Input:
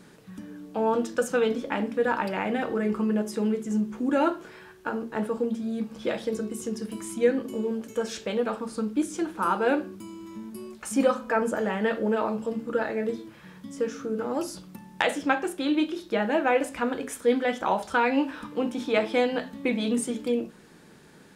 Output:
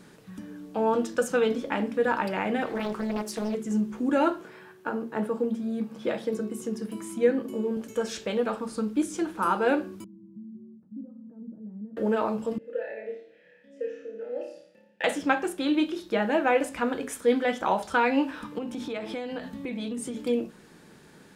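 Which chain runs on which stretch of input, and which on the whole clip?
2.66–3.55 tilt shelf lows -4 dB, about 1400 Hz + Doppler distortion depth 0.74 ms
4.41–7.77 HPF 110 Hz 24 dB/oct + bell 5800 Hz -5 dB 2.5 oct
10.04–11.97 compressor 2:1, threshold -38 dBFS + Butterworth band-pass 180 Hz, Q 1.5
12.58–15.04 vowel filter e + flutter echo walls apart 4.9 m, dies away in 0.65 s
18.58–20.17 bell 66 Hz +7 dB 2.3 oct + compressor, threshold -30 dBFS
whole clip: dry

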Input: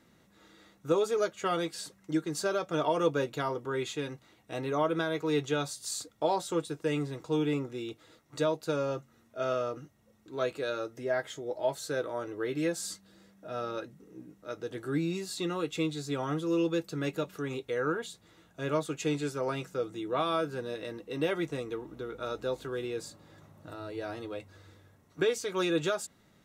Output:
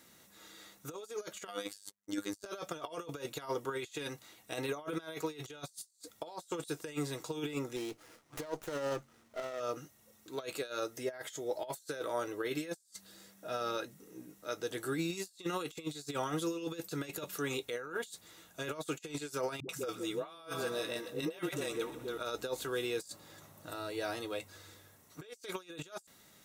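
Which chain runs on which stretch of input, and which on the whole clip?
1.47–2.46 gate -49 dBFS, range -31 dB + robotiser 101 Hz
7.76–9.6 LPF 7100 Hz + dynamic EQ 3200 Hz, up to -5 dB, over -56 dBFS, Q 1.7 + running maximum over 9 samples
19.6–22.18 dispersion highs, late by 90 ms, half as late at 340 Hz + split-band echo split 910 Hz, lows 0.171 s, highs 0.124 s, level -14.5 dB
whole clip: pre-emphasis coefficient 0.97; negative-ratio compressor -53 dBFS, ratio -0.5; tilt shelf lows +6.5 dB, about 1100 Hz; gain +13 dB

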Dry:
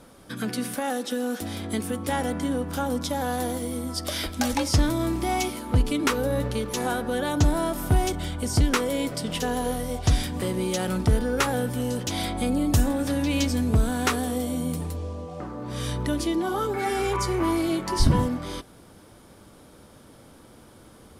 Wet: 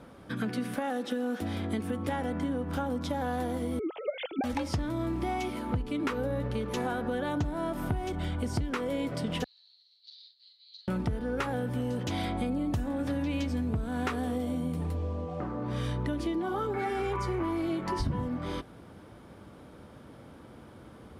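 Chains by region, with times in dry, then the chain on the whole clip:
3.79–4.44 sine-wave speech + band shelf 1400 Hz -9.5 dB 1.1 oct
9.44–10.88 minimum comb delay 8.4 ms + Butterworth band-pass 4200 Hz, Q 7.4 + doubler 44 ms -6 dB
whole clip: HPF 52 Hz; tone controls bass +2 dB, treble -13 dB; compressor 6:1, threshold -28 dBFS

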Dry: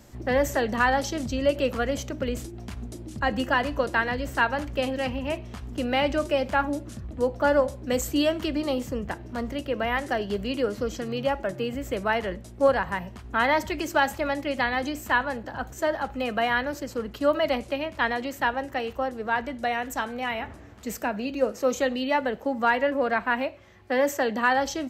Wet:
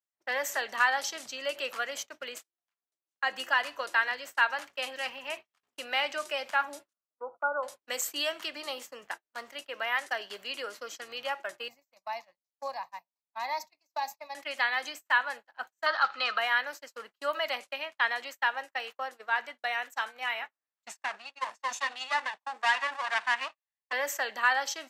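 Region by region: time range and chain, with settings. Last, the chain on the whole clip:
2.38–3.22 HPF 430 Hz + high shelf 3700 Hz -6.5 dB
6.93–7.63 brick-wall FIR low-pass 1500 Hz + low shelf 290 Hz -8.5 dB
11.68–14.35 bell 1800 Hz -15 dB 0.78 oct + fixed phaser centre 2100 Hz, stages 8
15.86–16.38 synth low-pass 4300 Hz, resonance Q 4.7 + bell 1300 Hz +14.5 dB 0.51 oct
20.87–23.93 minimum comb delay 1.1 ms + LPF 9800 Hz 24 dB/oct
whole clip: gate -32 dBFS, range -42 dB; HPF 1100 Hz 12 dB/oct

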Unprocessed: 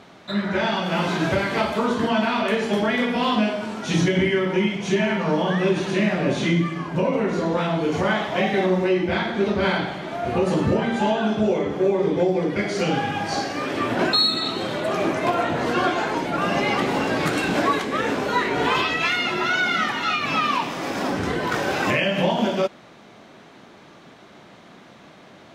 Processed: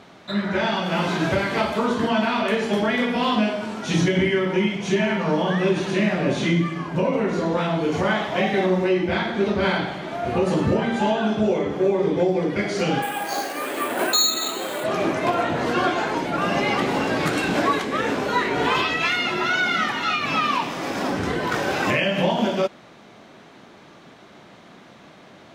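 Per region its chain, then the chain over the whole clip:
13.02–14.84 HPF 350 Hz + careless resampling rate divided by 4×, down filtered, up hold
whole clip: dry

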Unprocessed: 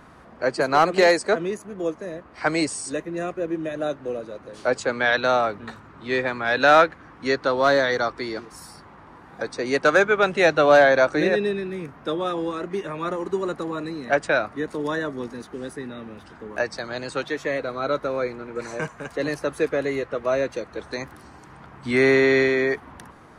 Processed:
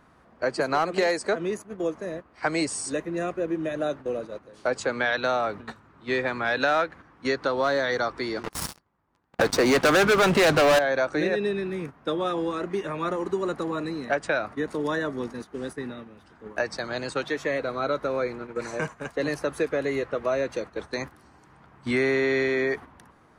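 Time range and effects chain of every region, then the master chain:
8.43–10.79 expander -40 dBFS + low shelf 180 Hz +5.5 dB + sample leveller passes 5
whole clip: gate -35 dBFS, range -9 dB; compressor 3:1, threshold -22 dBFS

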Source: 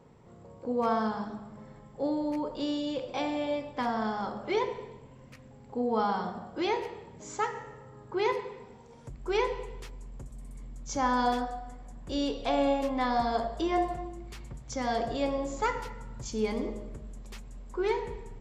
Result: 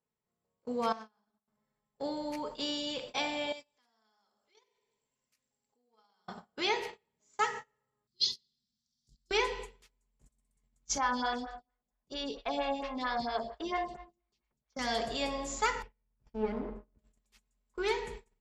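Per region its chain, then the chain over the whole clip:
0.92–1.48 self-modulated delay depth 0.066 ms + expander -33 dBFS + compressor 12:1, threshold -40 dBFS
3.52–6.28 tone controls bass -6 dB, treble +12 dB + compressor 3:1, threshold -45 dBFS
8.07–9.31 inverse Chebyshev band-stop 450–2500 Hz + band shelf 2600 Hz +16 dB 2.5 oct
10.98–14.79 LPF 5700 Hz 24 dB/oct + photocell phaser 4.4 Hz
15.82–16.99 minimum comb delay 0.39 ms + LPF 1100 Hz + three-band expander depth 40%
whole clip: gate -38 dBFS, range -30 dB; tilt shelf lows -7 dB, about 1300 Hz; comb 4.7 ms, depth 32%

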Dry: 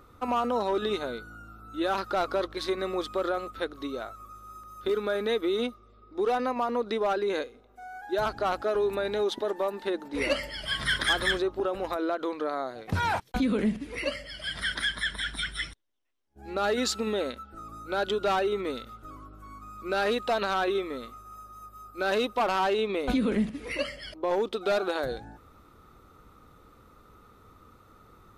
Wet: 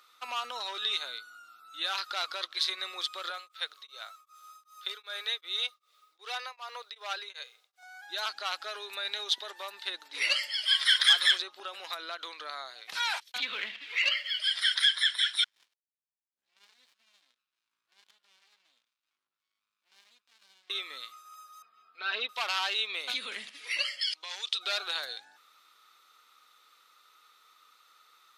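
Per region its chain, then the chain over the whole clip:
3.3–7.83 HPF 400 Hz 24 dB/oct + requantised 12-bit, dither none + beating tremolo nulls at 2.6 Hz
13.38–14.4 LPF 3400 Hz 24 dB/oct + tilt +2 dB/oct + sample leveller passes 1
15.44–20.7 passive tone stack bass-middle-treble 6-0-2 + harmonic tremolo 2.1 Hz, crossover 430 Hz + running maximum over 65 samples
21.62–22.29 air absorption 350 m + comb 4.4 ms, depth 87%
24.01–24.59 weighting filter ITU-R 468 + compressor 3:1, threshold -34 dBFS
whole clip: Bessel high-pass 1900 Hz, order 2; bell 3900 Hz +9.5 dB 1.6 oct

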